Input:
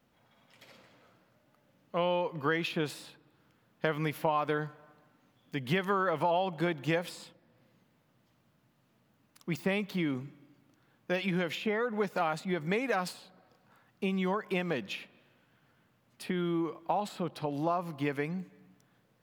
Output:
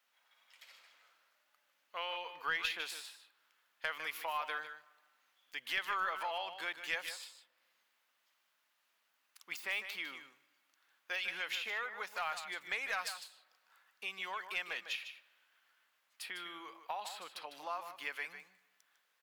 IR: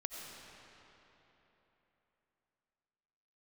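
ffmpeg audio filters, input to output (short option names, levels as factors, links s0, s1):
-af "highpass=1400,aeval=exprs='0.112*(cos(1*acos(clip(val(0)/0.112,-1,1)))-cos(1*PI/2))+0.0112*(cos(4*acos(clip(val(0)/0.112,-1,1)))-cos(4*PI/2))+0.00447*(cos(6*acos(clip(val(0)/0.112,-1,1)))-cos(6*PI/2))':c=same,aecho=1:1:152:0.316"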